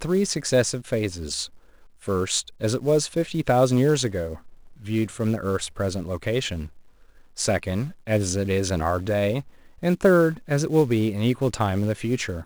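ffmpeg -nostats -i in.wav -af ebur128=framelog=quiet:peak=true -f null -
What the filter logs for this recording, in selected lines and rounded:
Integrated loudness:
  I:         -23.8 LUFS
  Threshold: -34.4 LUFS
Loudness range:
  LRA:         4.9 LU
  Threshold: -44.5 LUFS
  LRA low:   -27.5 LUFS
  LRA high:  -22.6 LUFS
True peak:
  Peak:       -6.0 dBFS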